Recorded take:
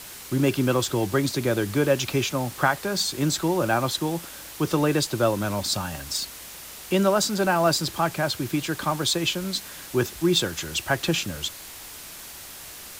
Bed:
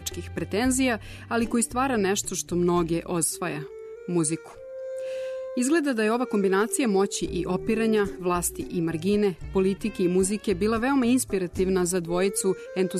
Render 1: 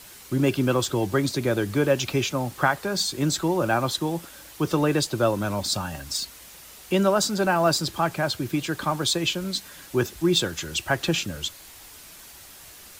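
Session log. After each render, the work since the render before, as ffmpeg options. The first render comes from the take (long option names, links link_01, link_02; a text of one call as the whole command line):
ffmpeg -i in.wav -af "afftdn=noise_reduction=6:noise_floor=-41" out.wav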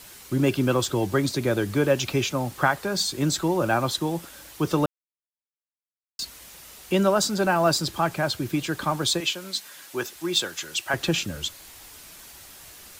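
ffmpeg -i in.wav -filter_complex "[0:a]asettb=1/sr,asplit=3[link_01][link_02][link_03];[link_01]atrim=end=9.204[link_04];[link_02]atrim=start=9.2:end=10.94,asetpts=PTS-STARTPTS,afade=type=in:duration=0.004:curve=qsin,afade=type=out:start_time=1.736:duration=0.004:curve=qsin,highpass=frequency=700:poles=1[link_05];[link_03]atrim=start=10.936[link_06];[link_04][link_05]acrossfade=duration=0.004:curve1=hsin:curve2=qsin[link_07];[link_07][link_06]acrossfade=duration=0.004:curve1=qsin:curve2=hsin,asplit=3[link_08][link_09][link_10];[link_08]atrim=end=4.86,asetpts=PTS-STARTPTS,afade=type=out:start_time=4.856:duration=0.004:curve=hsin[link_11];[link_09]atrim=start=4.86:end=6.19,asetpts=PTS-STARTPTS,volume=0[link_12];[link_10]atrim=start=6.19,asetpts=PTS-STARTPTS,afade=type=in:duration=0.004:curve=hsin[link_13];[link_11][link_12][link_13]concat=n=3:v=0:a=1" out.wav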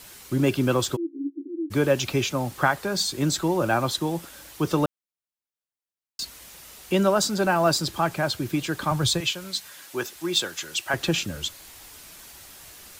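ffmpeg -i in.wav -filter_complex "[0:a]asplit=3[link_01][link_02][link_03];[link_01]afade=type=out:start_time=0.95:duration=0.02[link_04];[link_02]asuperpass=centerf=310:order=8:qfactor=4.4,afade=type=in:start_time=0.95:duration=0.02,afade=type=out:start_time=1.7:duration=0.02[link_05];[link_03]afade=type=in:start_time=1.7:duration=0.02[link_06];[link_04][link_05][link_06]amix=inputs=3:normalize=0,asettb=1/sr,asplit=3[link_07][link_08][link_09];[link_07]atrim=end=8.914[link_10];[link_08]atrim=start=8.91:end=9.73,asetpts=PTS-STARTPTS,afade=type=in:duration=0.004:curve=qsin,afade=type=out:start_time=0.816:duration=0.004:curve=qsin,lowshelf=frequency=170:width_type=q:width=1.5:gain=9[link_11];[link_09]atrim=start=9.726[link_12];[link_10][link_11]acrossfade=duration=0.004:curve1=hsin:curve2=qsin[link_13];[link_13][link_12]acrossfade=duration=0.004:curve1=qsin:curve2=hsin" out.wav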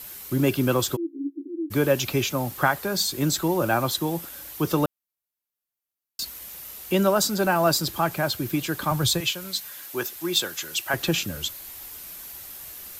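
ffmpeg -i in.wav -af "equalizer=frequency=13000:width_type=o:width=0.37:gain=13.5" out.wav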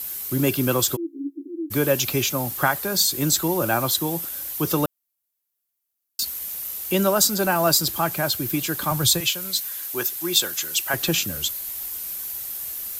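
ffmpeg -i in.wav -af "highshelf=frequency=5600:gain=10" out.wav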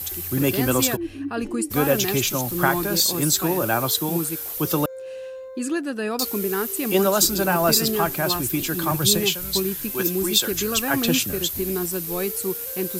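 ffmpeg -i in.wav -i bed.wav -filter_complex "[1:a]volume=-3dB[link_01];[0:a][link_01]amix=inputs=2:normalize=0" out.wav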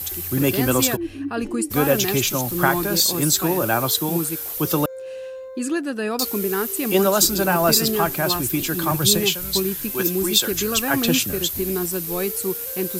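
ffmpeg -i in.wav -af "volume=1.5dB" out.wav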